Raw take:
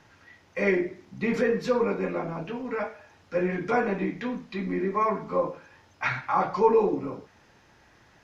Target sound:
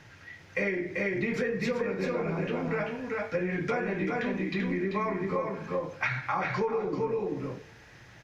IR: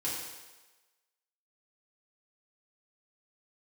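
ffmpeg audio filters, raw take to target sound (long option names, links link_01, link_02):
-filter_complex "[0:a]equalizer=frequency=125:width_type=o:width=1:gain=6,equalizer=frequency=250:width_type=o:width=1:gain=-3,equalizer=frequency=1000:width_type=o:width=1:gain=-5,equalizer=frequency=2000:width_type=o:width=1:gain=4,aecho=1:1:389:0.596,asplit=2[link_01][link_02];[1:a]atrim=start_sample=2205[link_03];[link_02][link_03]afir=irnorm=-1:irlink=0,volume=-24.5dB[link_04];[link_01][link_04]amix=inputs=2:normalize=0,acompressor=threshold=-29dB:ratio=12,volume=3dB"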